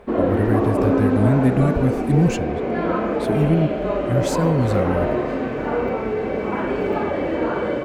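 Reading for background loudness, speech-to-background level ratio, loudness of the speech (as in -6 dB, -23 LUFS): -22.0 LUFS, 0.0 dB, -22.0 LUFS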